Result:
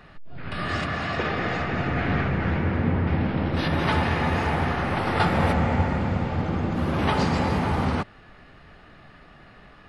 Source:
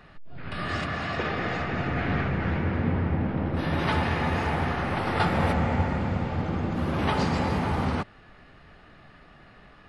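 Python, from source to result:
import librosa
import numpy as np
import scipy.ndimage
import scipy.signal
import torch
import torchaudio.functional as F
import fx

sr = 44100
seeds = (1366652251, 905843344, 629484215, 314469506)

y = fx.peak_eq(x, sr, hz=4400.0, db=9.0, octaves=1.9, at=(3.07, 3.68))
y = y * 10.0 ** (2.5 / 20.0)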